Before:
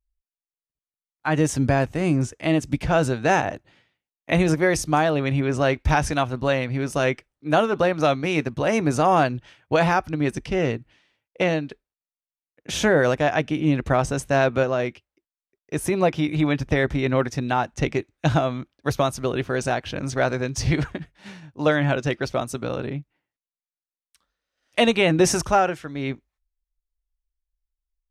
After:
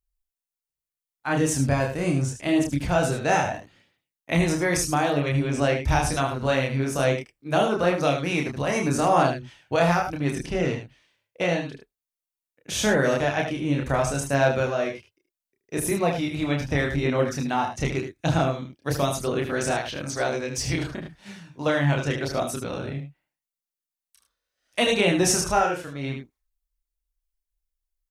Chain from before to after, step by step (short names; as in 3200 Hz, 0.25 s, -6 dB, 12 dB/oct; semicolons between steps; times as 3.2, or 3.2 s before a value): 19.78–20.89 low shelf 250 Hz -7.5 dB; echo 76 ms -8 dB; chorus voices 2, 0.38 Hz, delay 29 ms, depth 1.1 ms; high shelf 6400 Hz +9.5 dB